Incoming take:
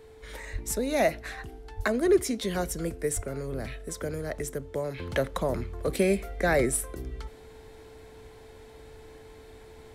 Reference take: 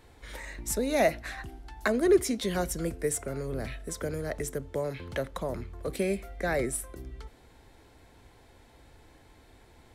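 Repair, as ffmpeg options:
-filter_complex "[0:a]bandreject=f=440:w=30,asplit=3[s0][s1][s2];[s0]afade=t=out:st=0.52:d=0.02[s3];[s1]highpass=f=140:w=0.5412,highpass=f=140:w=1.3066,afade=t=in:st=0.52:d=0.02,afade=t=out:st=0.64:d=0.02[s4];[s2]afade=t=in:st=0.64:d=0.02[s5];[s3][s4][s5]amix=inputs=3:normalize=0,asplit=3[s6][s7][s8];[s6]afade=t=out:st=1.76:d=0.02[s9];[s7]highpass=f=140:w=0.5412,highpass=f=140:w=1.3066,afade=t=in:st=1.76:d=0.02,afade=t=out:st=1.88:d=0.02[s10];[s8]afade=t=in:st=1.88:d=0.02[s11];[s9][s10][s11]amix=inputs=3:normalize=0,asplit=3[s12][s13][s14];[s12]afade=t=out:st=3.15:d=0.02[s15];[s13]highpass=f=140:w=0.5412,highpass=f=140:w=1.3066,afade=t=in:st=3.15:d=0.02,afade=t=out:st=3.27:d=0.02[s16];[s14]afade=t=in:st=3.27:d=0.02[s17];[s15][s16][s17]amix=inputs=3:normalize=0,asetnsamples=n=441:p=0,asendcmd='4.98 volume volume -5dB',volume=1"

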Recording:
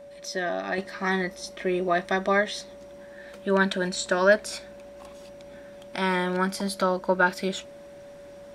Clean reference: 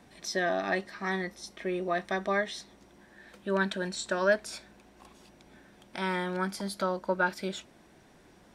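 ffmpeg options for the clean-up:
-af "bandreject=f=570:w=30,asetnsamples=n=441:p=0,asendcmd='0.78 volume volume -6dB',volume=1"

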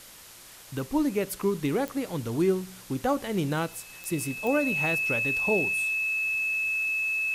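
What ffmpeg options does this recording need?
-af "adeclick=t=4,bandreject=f=2600:w=30,afwtdn=0.0045"

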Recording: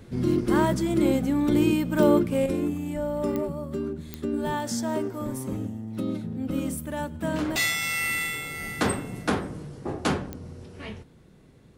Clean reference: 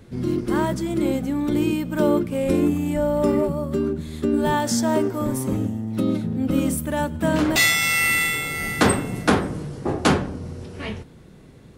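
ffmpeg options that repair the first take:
-af "adeclick=t=4,asetnsamples=n=441:p=0,asendcmd='2.46 volume volume 7.5dB',volume=1"

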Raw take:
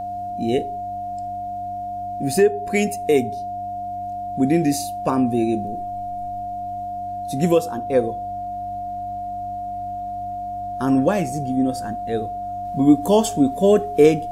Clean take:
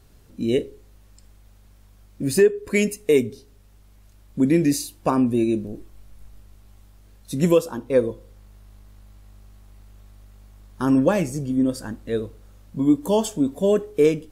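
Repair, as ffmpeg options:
-af "bandreject=f=97.8:t=h:w=4,bandreject=f=195.6:t=h:w=4,bandreject=f=293.4:t=h:w=4,bandreject=f=710:w=30,asetnsamples=n=441:p=0,asendcmd='12.65 volume volume -4dB',volume=1"

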